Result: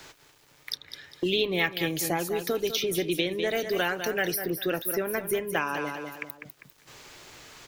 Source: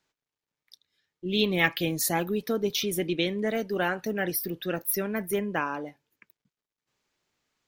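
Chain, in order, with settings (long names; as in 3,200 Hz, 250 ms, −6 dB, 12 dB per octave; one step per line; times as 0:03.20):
parametric band 210 Hz −13 dB 0.28 octaves
repeating echo 199 ms, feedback 20%, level −11 dB
multiband upward and downward compressor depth 100%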